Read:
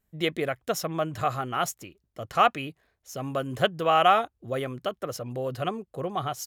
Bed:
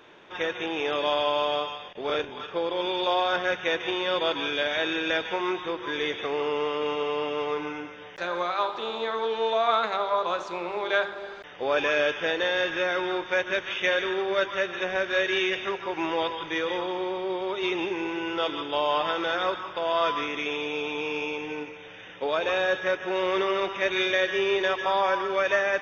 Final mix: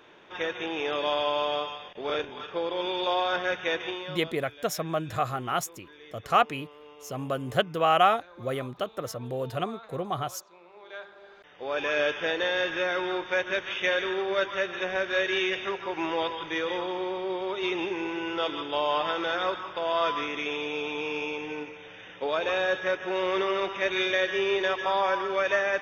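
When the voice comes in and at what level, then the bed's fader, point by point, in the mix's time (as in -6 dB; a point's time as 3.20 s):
3.95 s, -1.0 dB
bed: 3.82 s -2 dB
4.38 s -21.5 dB
10.67 s -21.5 dB
12.02 s -1.5 dB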